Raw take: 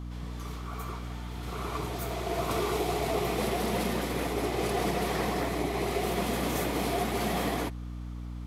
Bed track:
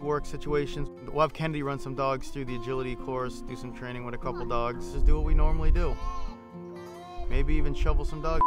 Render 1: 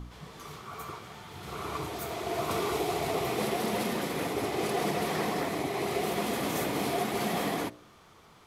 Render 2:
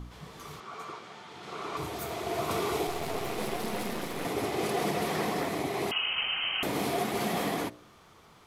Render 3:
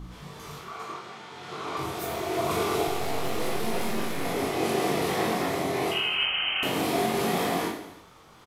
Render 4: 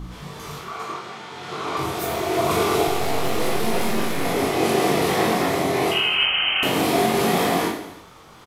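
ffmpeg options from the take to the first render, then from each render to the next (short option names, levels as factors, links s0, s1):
-af "bandreject=f=60:t=h:w=4,bandreject=f=120:t=h:w=4,bandreject=f=180:t=h:w=4,bandreject=f=240:t=h:w=4,bandreject=f=300:t=h:w=4,bandreject=f=360:t=h:w=4,bandreject=f=420:t=h:w=4,bandreject=f=480:t=h:w=4,bandreject=f=540:t=h:w=4,bandreject=f=600:t=h:w=4,bandreject=f=660:t=h:w=4"
-filter_complex "[0:a]asettb=1/sr,asplit=3[s0][s1][s2];[s0]atrim=end=0.604[s3];[s1]atrim=start=0.6:end=1.77,asetpts=PTS-STARTPTS,afade=t=in:d=0.004:c=qsin,afade=t=out:st=1.166:d=0.004:c=qsin,highpass=220,lowpass=6600[s4];[s2]atrim=start=1.766[s5];[s3][s4]acrossfade=d=0.004:c1=hsin:c2=qsin[s6];[s6][s5]acrossfade=d=0.004:c1=qsin:c2=hsin,asettb=1/sr,asplit=3[s7][s8][s9];[s7]atrim=end=2.874[s10];[s8]atrim=start=2.87:end=4.25,asetpts=PTS-STARTPTS,afade=t=in:d=0.004:c=qsin,afade=t=out:st=1.376:d=0.004:c=qsin,aeval=exprs='if(lt(val(0),0),0.251*val(0),val(0))':c=same[s11];[s9]atrim=start=4.246[s12];[s10][s11]acrossfade=d=0.004:c1=hsin:c2=qsin[s13];[s13][s12]acrossfade=d=0.004:c1=qsin:c2=hsin,asettb=1/sr,asplit=3[s14][s15][s16];[s14]atrim=end=5.914[s17];[s15]atrim=start=5.91:end=6.63,asetpts=PTS-STARTPTS,afade=t=in:d=0.004:c=qsin,afade=t=out:st=0.716:d=0.004:c=qsin,lowpass=f=2800:t=q:w=0.5098,lowpass=f=2800:t=q:w=0.6013,lowpass=f=2800:t=q:w=0.9,lowpass=f=2800:t=q:w=2.563,afreqshift=-3300[s18];[s16]atrim=start=6.626[s19];[s17][s18]acrossfade=d=0.004:c1=hsin:c2=qsin[s20];[s20][s19]acrossfade=d=0.004:c1=qsin:c2=hsin"
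-filter_complex "[0:a]asplit=2[s0][s1];[s1]adelay=22,volume=0.668[s2];[s0][s2]amix=inputs=2:normalize=0,aecho=1:1:40|90|152.5|230.6|328.3:0.631|0.398|0.251|0.158|0.1"
-af "volume=2.11"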